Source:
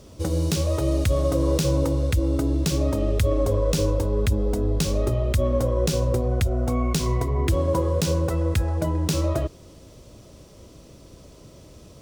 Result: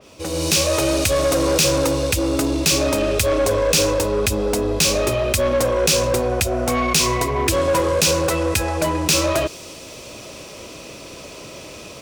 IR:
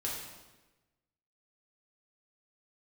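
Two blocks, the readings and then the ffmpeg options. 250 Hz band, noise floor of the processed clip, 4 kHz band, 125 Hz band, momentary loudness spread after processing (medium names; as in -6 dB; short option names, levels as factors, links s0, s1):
+3.0 dB, -38 dBFS, +13.0 dB, -3.5 dB, 19 LU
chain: -filter_complex "[0:a]equalizer=f=2500:t=o:w=0.27:g=9,asplit=2[s0][s1];[s1]highpass=f=720:p=1,volume=11.2,asoftclip=type=tanh:threshold=0.355[s2];[s0][s2]amix=inputs=2:normalize=0,lowpass=f=7500:p=1,volume=0.501,dynaudnorm=f=240:g=3:m=3.16,adynamicequalizer=threshold=0.0355:dfrequency=3500:dqfactor=0.7:tfrequency=3500:tqfactor=0.7:attack=5:release=100:ratio=0.375:range=3.5:mode=boostabove:tftype=highshelf,volume=0.376"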